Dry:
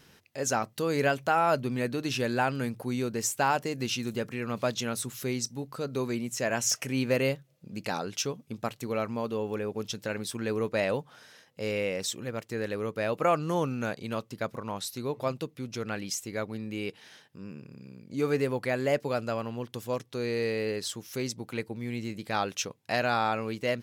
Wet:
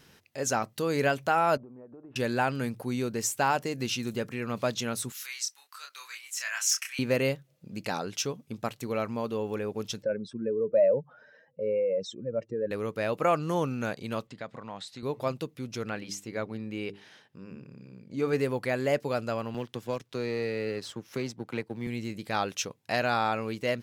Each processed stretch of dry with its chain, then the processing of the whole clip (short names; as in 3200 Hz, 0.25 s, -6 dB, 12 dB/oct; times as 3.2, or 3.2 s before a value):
1.57–2.16 LPF 1000 Hz 24 dB/oct + bell 120 Hz -12 dB 2.6 oct + compressor 12:1, threshold -44 dBFS
5.12–6.99 HPF 1300 Hz 24 dB/oct + doubler 29 ms -4 dB
10.02–12.71 spectral contrast raised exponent 2.1 + speaker cabinet 110–5500 Hz, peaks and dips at 590 Hz +8 dB, 3300 Hz -8 dB, 4700 Hz -8 dB + mismatched tape noise reduction decoder only
14.27–15.03 compressor 2:1, threshold -40 dBFS + speaker cabinet 110–7400 Hz, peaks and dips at 370 Hz -5 dB, 730 Hz +4 dB, 1900 Hz +5 dB, 3500 Hz +3 dB, 5800 Hz -9 dB
15.9–18.33 LPF 3800 Hz 6 dB/oct + notches 50/100/150/200/250/300/350/400 Hz
19.54–21.87 G.711 law mismatch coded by A + high shelf 5900 Hz -10.5 dB + three-band squash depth 70%
whole clip: dry